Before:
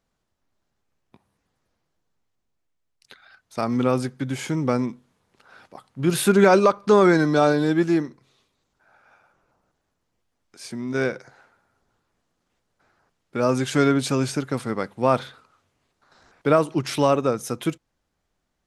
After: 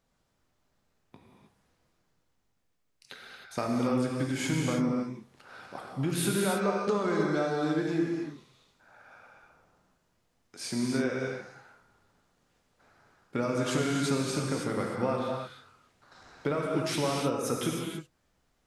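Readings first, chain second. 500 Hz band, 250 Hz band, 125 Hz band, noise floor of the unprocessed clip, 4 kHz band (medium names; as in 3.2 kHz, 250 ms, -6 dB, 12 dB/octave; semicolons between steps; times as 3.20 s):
-10.0 dB, -7.0 dB, -6.5 dB, -76 dBFS, -4.0 dB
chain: compression 6:1, threshold -29 dBFS, peak gain reduction 17 dB; gated-style reverb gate 340 ms flat, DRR -1.5 dB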